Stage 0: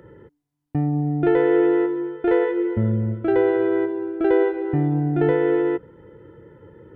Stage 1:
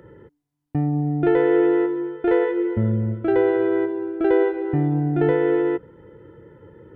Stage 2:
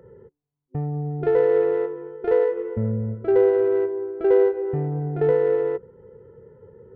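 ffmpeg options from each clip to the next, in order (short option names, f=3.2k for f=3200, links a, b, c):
-af anull
-af "adynamicsmooth=sensitivity=0.5:basefreq=1.5k,superequalizer=6b=0.316:7b=2:16b=2.82,volume=-3.5dB"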